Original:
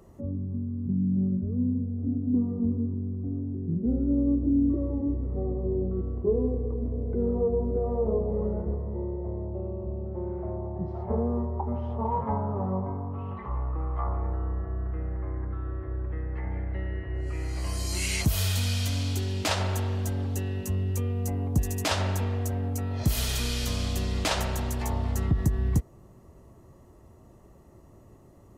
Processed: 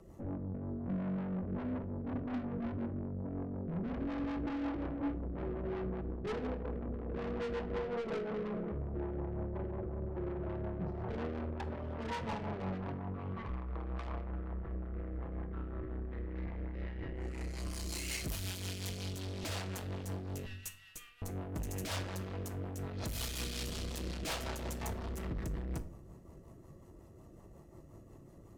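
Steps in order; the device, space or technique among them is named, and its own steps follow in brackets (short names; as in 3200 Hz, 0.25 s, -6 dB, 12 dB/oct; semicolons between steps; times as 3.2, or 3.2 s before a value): 7.84–8.72 HPF 150 Hz 24 dB/oct; 20.46–21.22 HPF 1500 Hz 24 dB/oct; overdriven rotary cabinet (tube stage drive 37 dB, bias 0.65; rotary speaker horn 5.5 Hz); shoebox room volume 700 m³, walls furnished, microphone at 0.71 m; gain +2.5 dB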